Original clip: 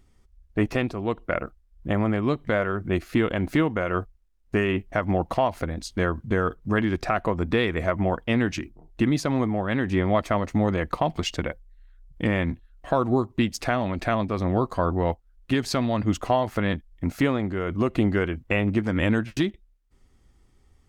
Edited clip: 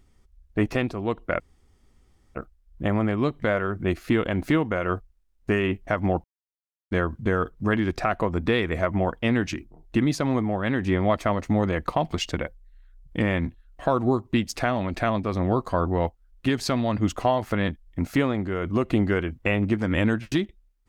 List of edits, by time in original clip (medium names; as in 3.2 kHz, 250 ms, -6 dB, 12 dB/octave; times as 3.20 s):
1.40 s: insert room tone 0.95 s
5.29–5.96 s: mute